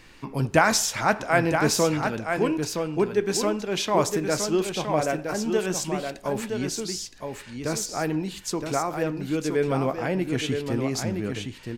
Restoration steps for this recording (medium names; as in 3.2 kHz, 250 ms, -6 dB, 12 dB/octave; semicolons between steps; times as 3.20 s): expander -30 dBFS, range -21 dB; inverse comb 967 ms -6 dB